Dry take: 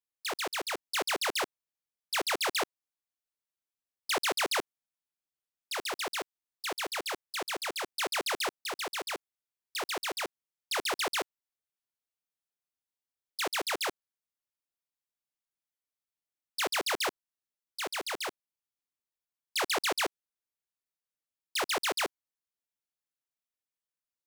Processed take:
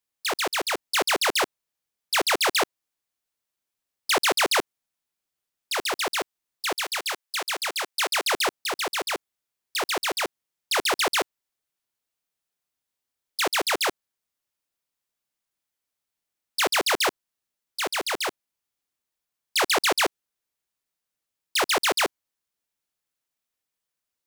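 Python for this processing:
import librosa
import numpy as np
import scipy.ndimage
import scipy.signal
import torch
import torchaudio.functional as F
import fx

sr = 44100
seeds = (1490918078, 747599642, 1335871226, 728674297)

y = fx.highpass(x, sr, hz=fx.line((6.75, 1200.0), (8.25, 580.0)), slope=6, at=(6.75, 8.25), fade=0.02)
y = y * 10.0 ** (8.0 / 20.0)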